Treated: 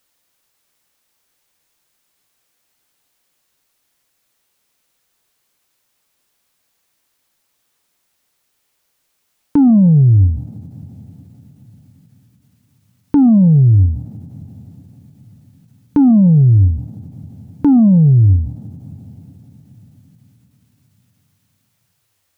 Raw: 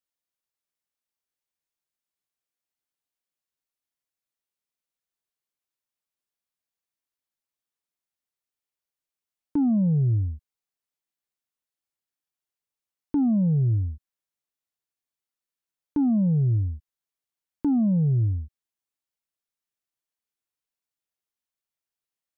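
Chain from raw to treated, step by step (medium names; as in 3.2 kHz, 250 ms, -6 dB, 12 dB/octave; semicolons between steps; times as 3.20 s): dynamic bell 460 Hz, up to -5 dB, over -34 dBFS, Q 0.77; two-slope reverb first 0.4 s, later 4.7 s, from -22 dB, DRR 14.5 dB; loudness maximiser +28 dB; endings held to a fixed fall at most 100 dB/s; trim -4.5 dB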